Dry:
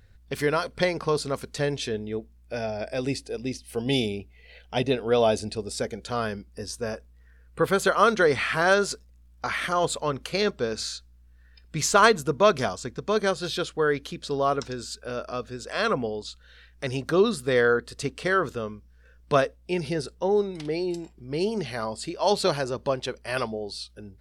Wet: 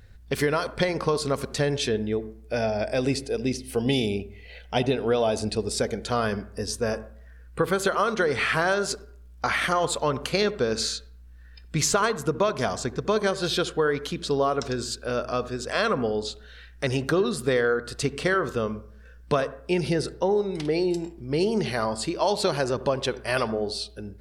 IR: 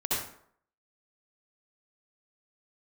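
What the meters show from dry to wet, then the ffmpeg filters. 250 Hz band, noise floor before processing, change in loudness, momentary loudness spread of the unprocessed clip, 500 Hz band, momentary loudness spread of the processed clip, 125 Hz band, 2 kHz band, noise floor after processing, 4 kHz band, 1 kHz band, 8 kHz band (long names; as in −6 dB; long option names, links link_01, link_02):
+2.0 dB, −55 dBFS, 0.0 dB, 13 LU, 0.0 dB, 7 LU, +2.5 dB, −0.5 dB, −47 dBFS, +1.5 dB, −1.0 dB, +2.0 dB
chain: -filter_complex "[0:a]acompressor=threshold=-24dB:ratio=12,asplit=2[link_01][link_02];[1:a]atrim=start_sample=2205,lowpass=2100[link_03];[link_02][link_03]afir=irnorm=-1:irlink=0,volume=-22.5dB[link_04];[link_01][link_04]amix=inputs=2:normalize=0,volume=4.5dB"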